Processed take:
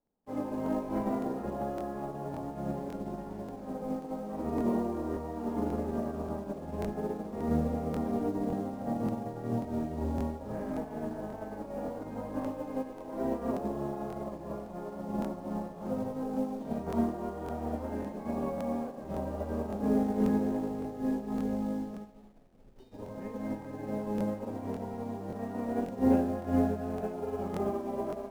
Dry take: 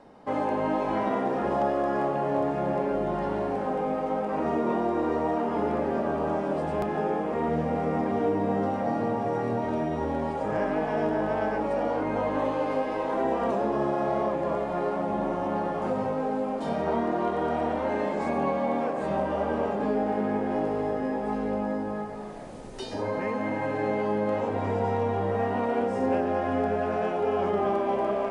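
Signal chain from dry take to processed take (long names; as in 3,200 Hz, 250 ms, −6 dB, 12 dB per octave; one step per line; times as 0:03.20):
spectral tilt −3.5 dB per octave
mains-hum notches 50/100/150 Hz
on a send: delay with a low-pass on its return 140 ms, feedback 80%, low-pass 980 Hz, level −21 dB
on the sum: four-comb reverb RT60 0.31 s, combs from 27 ms, DRR 7.5 dB
in parallel at −7 dB: bit reduction 6 bits
on the sum: regular buffer underruns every 0.56 s, samples 1,024, repeat, from 0:00.64
expander for the loud parts 2.5 to 1, over −33 dBFS
level −8 dB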